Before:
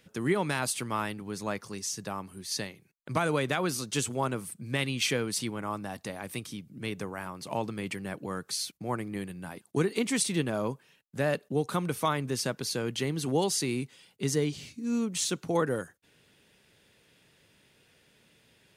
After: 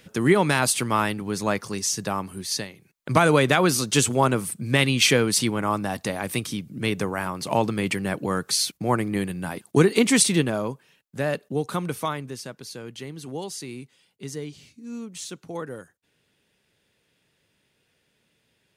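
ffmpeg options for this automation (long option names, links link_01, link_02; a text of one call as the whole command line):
ffmpeg -i in.wav -af "volume=18dB,afade=type=out:start_time=2.41:duration=0.26:silence=0.398107,afade=type=in:start_time=2.67:duration=0.43:silence=0.354813,afade=type=out:start_time=10.2:duration=0.46:silence=0.421697,afade=type=out:start_time=11.89:duration=0.52:silence=0.375837" out.wav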